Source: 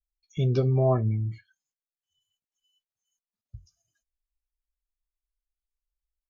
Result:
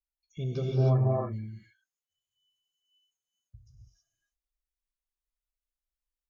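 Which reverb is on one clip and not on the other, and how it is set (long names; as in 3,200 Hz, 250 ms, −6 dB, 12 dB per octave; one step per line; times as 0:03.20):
reverb whose tail is shaped and stops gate 340 ms rising, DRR −4 dB
level −9 dB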